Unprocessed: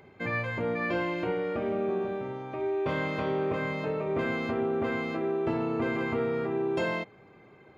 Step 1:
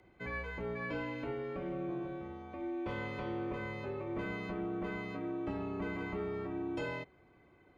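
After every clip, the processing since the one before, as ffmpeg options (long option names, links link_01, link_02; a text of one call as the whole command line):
ffmpeg -i in.wav -af "afreqshift=-49,volume=-9dB" out.wav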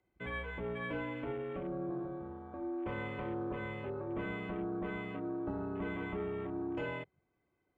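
ffmpeg -i in.wav -af "afwtdn=0.00398" out.wav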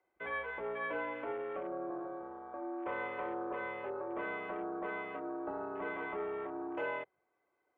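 ffmpeg -i in.wav -filter_complex "[0:a]acrossover=split=410 2100:gain=0.0631 1 0.224[link_01][link_02][link_03];[link_01][link_02][link_03]amix=inputs=3:normalize=0,volume=5.5dB" out.wav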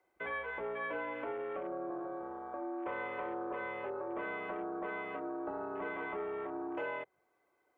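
ffmpeg -i in.wav -af "acompressor=threshold=-43dB:ratio=2,volume=4dB" out.wav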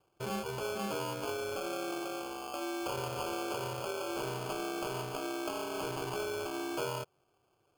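ffmpeg -i in.wav -af "acrusher=samples=23:mix=1:aa=0.000001,volume=2.5dB" out.wav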